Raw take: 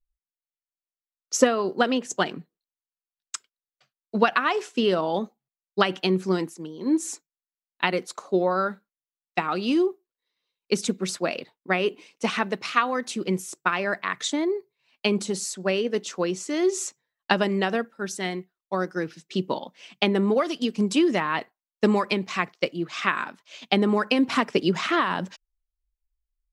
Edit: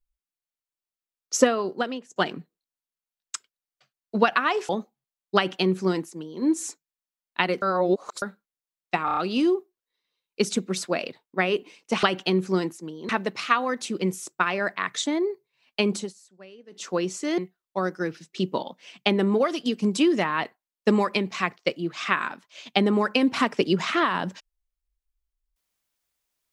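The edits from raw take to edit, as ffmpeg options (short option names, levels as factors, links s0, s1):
-filter_complex "[0:a]asplit=14[s0][s1][s2][s3][s4][s5][s6][s7][s8][s9][s10][s11][s12][s13];[s0]atrim=end=2.16,asetpts=PTS-STARTPTS,afade=t=out:st=1.49:d=0.67:silence=0.0668344[s14];[s1]atrim=start=2.16:end=4.692,asetpts=PTS-STARTPTS,afade=t=in:d=0.004:c=hsin:silence=0.0668344[s15];[s2]atrim=start=5.128:end=8.062[s16];[s3]atrim=start=8.058:end=8.662,asetpts=PTS-STARTPTS,areverse[s17];[s4]atrim=start=8.658:end=9.522[s18];[s5]atrim=start=9.488:end=9.522[s19];[s6]atrim=start=9.488:end=9.522[s20];[s7]atrim=start=9.488:end=9.522[s21];[s8]atrim=start=9.488:end=12.352[s22];[s9]atrim=start=5.798:end=6.862[s23];[s10]atrim=start=12.348:end=15.39,asetpts=PTS-STARTPTS,afade=t=out:st=2.892:d=0.15:silence=0.0749894[s24];[s11]atrim=start=15.39:end=15.97,asetpts=PTS-STARTPTS,volume=0.075[s25];[s12]atrim=start=15.97:end=16.642,asetpts=PTS-STARTPTS,afade=t=in:d=0.15:silence=0.0749894[s26];[s13]atrim=start=18.338[s27];[s14][s15]concat=n=2:v=0:a=1[s28];[s28][s16]acrossfade=d=0.004:c1=hsin:c2=hsin[s29];[s29][s17]acrossfade=d=0.004:c1=hsin:c2=hsin[s30];[s30][s18]acrossfade=d=0.004:c1=hsin:c2=hsin[s31];[s31][s19]acrossfade=d=0.004:c1=hsin:c2=hsin[s32];[s32][s20]acrossfade=d=0.004:c1=hsin:c2=hsin[s33];[s33][s21]acrossfade=d=0.004:c1=hsin:c2=hsin[s34];[s34][s22]acrossfade=d=0.004:c1=hsin:c2=hsin[s35];[s35][s23]acrossfade=d=0.004:c1=hsin:c2=hsin[s36];[s24][s25][s26]concat=n=3:v=0:a=1[s37];[s36][s37]acrossfade=d=0.004:c1=hsin:c2=hsin[s38];[s38][s27]acrossfade=d=0.004:c1=hsin:c2=hsin"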